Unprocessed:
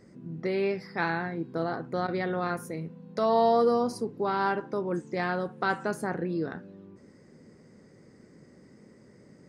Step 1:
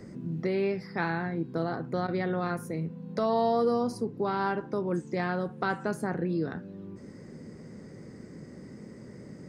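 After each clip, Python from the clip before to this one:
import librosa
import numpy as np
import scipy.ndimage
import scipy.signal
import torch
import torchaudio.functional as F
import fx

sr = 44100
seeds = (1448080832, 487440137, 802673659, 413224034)

y = fx.low_shelf(x, sr, hz=200.0, db=8.5)
y = fx.band_squash(y, sr, depth_pct=40)
y = F.gain(torch.from_numpy(y), -2.5).numpy()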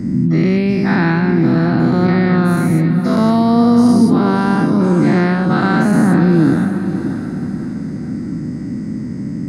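y = fx.spec_dilate(x, sr, span_ms=240)
y = fx.low_shelf_res(y, sr, hz=350.0, db=7.0, q=3.0)
y = fx.echo_diffused(y, sr, ms=583, feedback_pct=43, wet_db=-10.0)
y = F.gain(torch.from_numpy(y), 7.0).numpy()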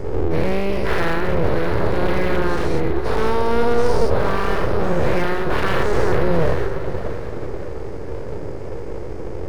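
y = np.abs(x)
y = np.interp(np.arange(len(y)), np.arange(len(y))[::3], y[::3])
y = F.gain(torch.from_numpy(y), -2.5).numpy()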